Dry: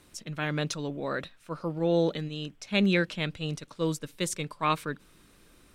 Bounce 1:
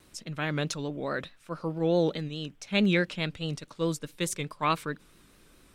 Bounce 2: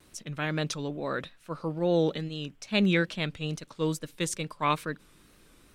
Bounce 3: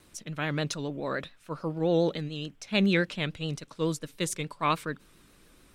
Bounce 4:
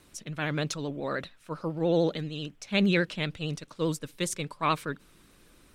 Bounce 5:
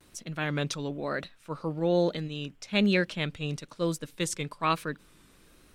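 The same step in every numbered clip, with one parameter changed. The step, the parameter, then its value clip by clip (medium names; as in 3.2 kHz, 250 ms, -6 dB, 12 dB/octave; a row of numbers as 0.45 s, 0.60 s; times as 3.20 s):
vibrato, rate: 4.7 Hz, 2.3 Hz, 7 Hz, 13 Hz, 1.1 Hz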